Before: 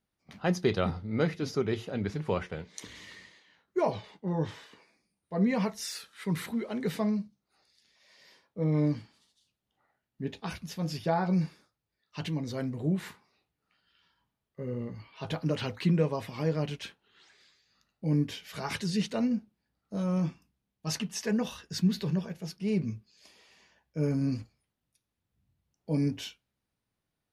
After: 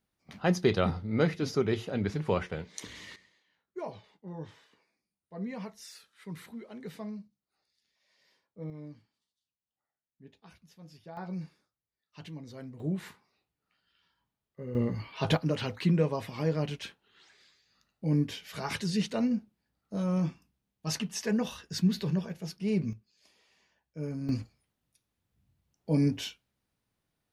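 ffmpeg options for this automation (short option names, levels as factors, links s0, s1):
-af "asetnsamples=n=441:p=0,asendcmd='3.16 volume volume -11dB;8.7 volume volume -18.5dB;11.17 volume volume -10.5dB;12.8 volume volume -3.5dB;14.75 volume volume 8dB;15.37 volume volume 0dB;22.93 volume volume -7.5dB;24.29 volume volume 2.5dB',volume=1.19"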